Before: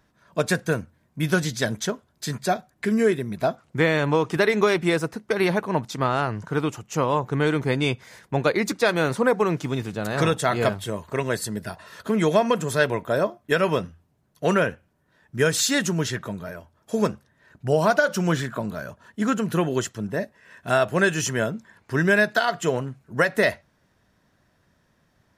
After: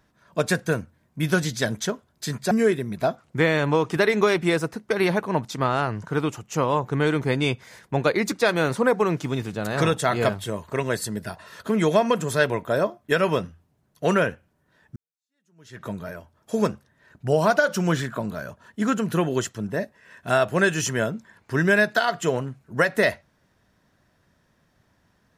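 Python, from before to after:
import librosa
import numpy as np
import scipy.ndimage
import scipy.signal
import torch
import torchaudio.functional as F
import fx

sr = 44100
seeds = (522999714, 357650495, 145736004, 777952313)

y = fx.edit(x, sr, fx.cut(start_s=2.51, length_s=0.4),
    fx.fade_in_span(start_s=15.36, length_s=0.9, curve='exp'), tone=tone)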